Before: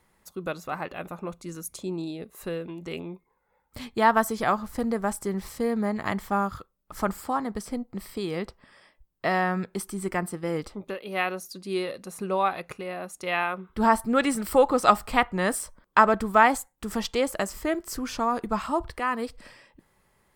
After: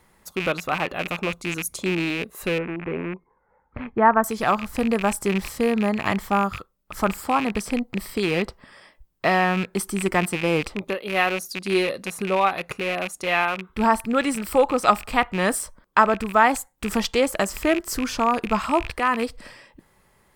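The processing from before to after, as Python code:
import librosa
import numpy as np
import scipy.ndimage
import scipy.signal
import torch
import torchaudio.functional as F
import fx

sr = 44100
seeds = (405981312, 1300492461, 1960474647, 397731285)

y = fx.rattle_buzz(x, sr, strikes_db=-43.0, level_db=-24.0)
y = fx.lowpass(y, sr, hz=1800.0, slope=24, at=(2.58, 4.24))
y = fx.rider(y, sr, range_db=3, speed_s=0.5)
y = F.gain(torch.from_numpy(y), 4.0).numpy()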